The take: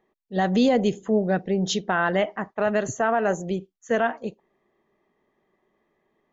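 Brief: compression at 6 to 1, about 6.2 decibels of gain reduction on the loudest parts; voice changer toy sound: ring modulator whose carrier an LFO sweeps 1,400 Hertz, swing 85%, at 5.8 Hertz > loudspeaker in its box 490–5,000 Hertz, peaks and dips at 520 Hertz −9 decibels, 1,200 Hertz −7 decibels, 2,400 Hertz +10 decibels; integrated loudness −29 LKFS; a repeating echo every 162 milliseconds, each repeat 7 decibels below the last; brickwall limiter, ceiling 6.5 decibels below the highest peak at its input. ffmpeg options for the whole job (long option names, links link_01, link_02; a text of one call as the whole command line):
ffmpeg -i in.wav -af "acompressor=threshold=-22dB:ratio=6,alimiter=limit=-18.5dB:level=0:latency=1,aecho=1:1:162|324|486|648|810:0.447|0.201|0.0905|0.0407|0.0183,aeval=exprs='val(0)*sin(2*PI*1400*n/s+1400*0.85/5.8*sin(2*PI*5.8*n/s))':channel_layout=same,highpass=490,equalizer=frequency=520:width_type=q:width=4:gain=-9,equalizer=frequency=1200:width_type=q:width=4:gain=-7,equalizer=frequency=2400:width_type=q:width=4:gain=10,lowpass=frequency=5000:width=0.5412,lowpass=frequency=5000:width=1.3066,volume=-2dB" out.wav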